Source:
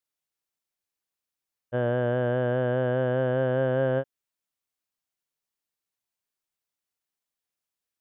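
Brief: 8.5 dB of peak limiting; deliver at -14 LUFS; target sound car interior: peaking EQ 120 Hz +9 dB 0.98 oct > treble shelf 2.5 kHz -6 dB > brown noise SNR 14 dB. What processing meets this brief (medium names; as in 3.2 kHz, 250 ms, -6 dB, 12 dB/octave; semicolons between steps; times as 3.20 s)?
peak limiter -23.5 dBFS; peaking EQ 120 Hz +9 dB 0.98 oct; treble shelf 2.5 kHz -6 dB; brown noise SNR 14 dB; trim +15 dB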